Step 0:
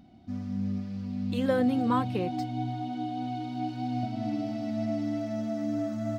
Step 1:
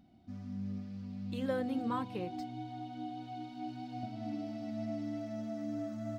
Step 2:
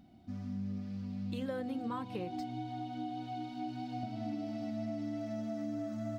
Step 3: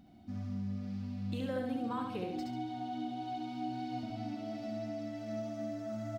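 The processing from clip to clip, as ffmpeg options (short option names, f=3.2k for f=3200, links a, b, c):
-af "bandreject=f=124.4:t=h:w=4,bandreject=f=248.8:t=h:w=4,bandreject=f=373.2:t=h:w=4,bandreject=f=497.6:t=h:w=4,bandreject=f=622:t=h:w=4,bandreject=f=746.4:t=h:w=4,bandreject=f=870.8:t=h:w=4,bandreject=f=995.2:t=h:w=4,bandreject=f=1.1196k:t=h:w=4,volume=-8dB"
-af "acompressor=threshold=-38dB:ratio=6,volume=3.5dB"
-af "aecho=1:1:70|140|210|280|350:0.668|0.254|0.0965|0.0367|0.0139"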